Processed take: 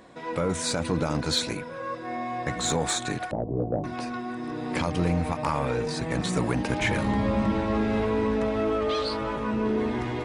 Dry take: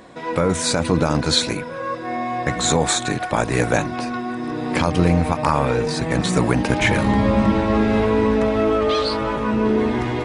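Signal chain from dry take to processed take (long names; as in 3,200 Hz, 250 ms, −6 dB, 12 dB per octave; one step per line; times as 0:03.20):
0:03.31–0:03.84: Butterworth low-pass 730 Hz 36 dB per octave
soft clipping −6.5 dBFS, distortion −22 dB
level −7 dB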